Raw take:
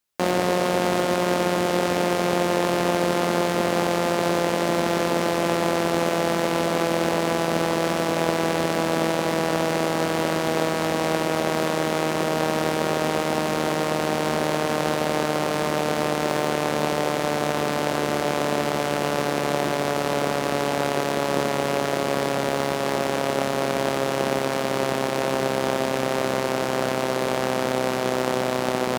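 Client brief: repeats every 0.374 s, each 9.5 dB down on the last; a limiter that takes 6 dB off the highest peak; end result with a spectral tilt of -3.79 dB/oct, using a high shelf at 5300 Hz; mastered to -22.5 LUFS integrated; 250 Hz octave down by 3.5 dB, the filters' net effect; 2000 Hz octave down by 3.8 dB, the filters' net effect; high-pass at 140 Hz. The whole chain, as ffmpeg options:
-af "highpass=140,equalizer=f=250:t=o:g=-4.5,equalizer=f=2k:t=o:g=-6,highshelf=f=5.3k:g=7.5,alimiter=limit=-11dB:level=0:latency=1,aecho=1:1:374|748|1122|1496:0.335|0.111|0.0365|0.012,volume=4dB"

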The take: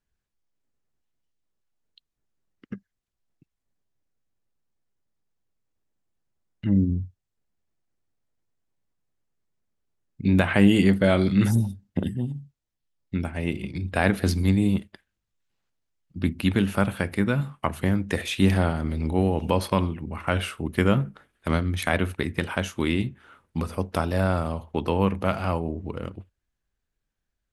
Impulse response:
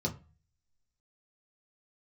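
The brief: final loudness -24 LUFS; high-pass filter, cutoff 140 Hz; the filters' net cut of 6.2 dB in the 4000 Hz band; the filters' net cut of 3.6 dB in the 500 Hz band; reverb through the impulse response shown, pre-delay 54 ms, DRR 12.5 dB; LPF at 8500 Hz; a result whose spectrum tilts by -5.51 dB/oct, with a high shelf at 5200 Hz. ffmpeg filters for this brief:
-filter_complex "[0:a]highpass=140,lowpass=8.5k,equalizer=f=500:t=o:g=-4.5,equalizer=f=4k:t=o:g=-6.5,highshelf=f=5.2k:g=-5.5,asplit=2[a][b];[1:a]atrim=start_sample=2205,adelay=54[c];[b][c]afir=irnorm=-1:irlink=0,volume=-16.5dB[d];[a][d]amix=inputs=2:normalize=0,volume=2.5dB"

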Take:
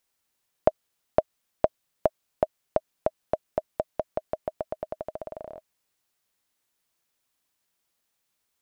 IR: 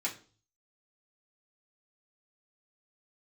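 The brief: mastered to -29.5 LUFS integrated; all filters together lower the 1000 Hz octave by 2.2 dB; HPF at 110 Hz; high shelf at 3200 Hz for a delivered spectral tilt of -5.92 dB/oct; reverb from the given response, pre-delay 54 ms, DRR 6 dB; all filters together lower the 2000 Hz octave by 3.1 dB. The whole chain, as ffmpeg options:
-filter_complex "[0:a]highpass=110,equalizer=f=1k:t=o:g=-3.5,equalizer=f=2k:t=o:g=-5,highshelf=f=3.2k:g=7.5,asplit=2[a][b];[1:a]atrim=start_sample=2205,adelay=54[c];[b][c]afir=irnorm=-1:irlink=0,volume=-10dB[d];[a][d]amix=inputs=2:normalize=0,volume=3.5dB"

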